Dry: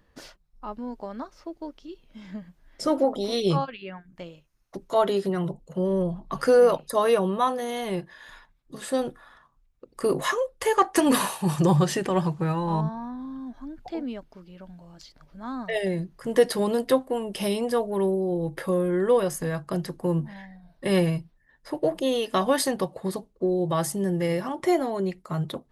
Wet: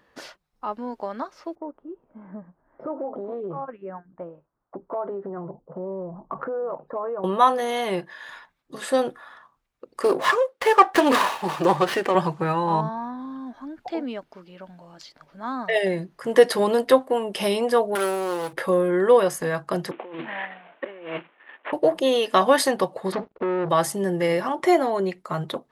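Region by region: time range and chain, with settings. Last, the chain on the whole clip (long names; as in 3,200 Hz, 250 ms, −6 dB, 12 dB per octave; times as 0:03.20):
0:01.55–0:07.24: low-pass filter 1,200 Hz 24 dB per octave + downward compressor, threshold −32 dBFS
0:10.02–0:12.15: high-pass filter 260 Hz + windowed peak hold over 5 samples
0:17.95–0:18.53: lower of the sound and its delayed copy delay 0.39 ms + leveller curve on the samples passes 1 + spectral tilt +4.5 dB per octave
0:19.91–0:21.73: variable-slope delta modulation 16 kbit/s + high-pass filter 270 Hz 24 dB per octave + compressor whose output falls as the input rises −39 dBFS
0:23.12–0:23.69: downward compressor, threshold −29 dBFS + leveller curve on the samples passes 3 + high-frequency loss of the air 240 metres
whole clip: high-pass filter 600 Hz 6 dB per octave; high-shelf EQ 3,700 Hz −9 dB; level +9 dB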